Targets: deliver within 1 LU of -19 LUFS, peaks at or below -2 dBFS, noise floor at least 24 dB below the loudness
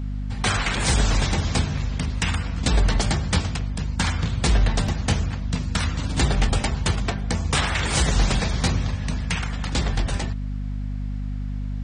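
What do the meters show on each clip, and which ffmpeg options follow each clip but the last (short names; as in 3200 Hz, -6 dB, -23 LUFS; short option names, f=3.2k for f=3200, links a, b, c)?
hum 50 Hz; harmonics up to 250 Hz; hum level -25 dBFS; loudness -24.0 LUFS; peak -8.5 dBFS; loudness target -19.0 LUFS
-> -af "bandreject=f=50:t=h:w=4,bandreject=f=100:t=h:w=4,bandreject=f=150:t=h:w=4,bandreject=f=200:t=h:w=4,bandreject=f=250:t=h:w=4"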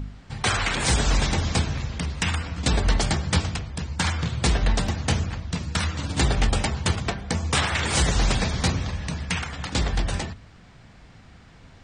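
hum none; loudness -25.0 LUFS; peak -9.5 dBFS; loudness target -19.0 LUFS
-> -af "volume=6dB"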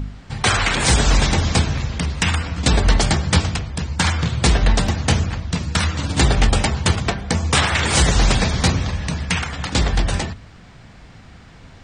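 loudness -19.0 LUFS; peak -3.5 dBFS; noise floor -43 dBFS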